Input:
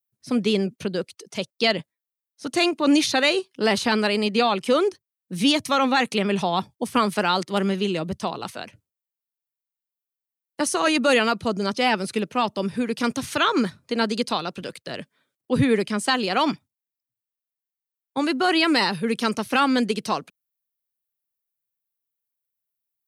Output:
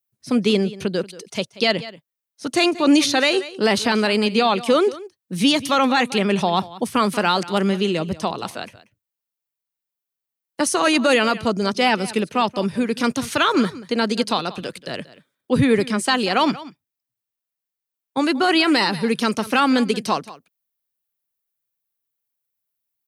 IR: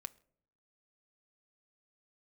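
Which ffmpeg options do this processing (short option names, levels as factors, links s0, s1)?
-filter_complex "[0:a]asplit=2[s0][s1];[s1]aecho=0:1:183:0.126[s2];[s0][s2]amix=inputs=2:normalize=0,alimiter=level_in=2.99:limit=0.891:release=50:level=0:latency=1,volume=0.501"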